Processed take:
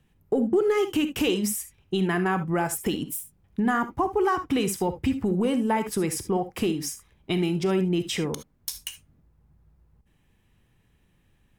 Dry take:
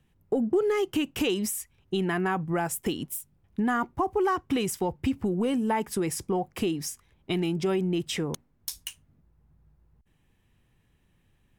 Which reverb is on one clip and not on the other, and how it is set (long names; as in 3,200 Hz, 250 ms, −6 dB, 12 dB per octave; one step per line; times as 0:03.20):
reverb whose tail is shaped and stops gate 90 ms rising, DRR 9.5 dB
level +2 dB